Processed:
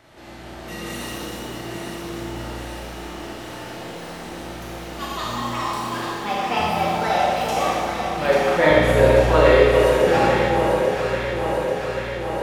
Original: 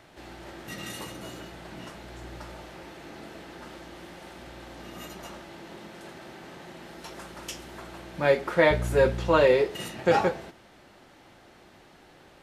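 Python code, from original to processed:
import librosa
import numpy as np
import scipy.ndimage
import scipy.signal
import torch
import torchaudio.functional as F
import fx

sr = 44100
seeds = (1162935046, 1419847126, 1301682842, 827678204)

y = fx.echo_pitch(x, sr, ms=439, semitones=6, count=2, db_per_echo=-6.0)
y = fx.echo_alternate(y, sr, ms=420, hz=1200.0, feedback_pct=84, wet_db=-5)
y = fx.rev_schroeder(y, sr, rt60_s=1.8, comb_ms=26, drr_db=-5.0)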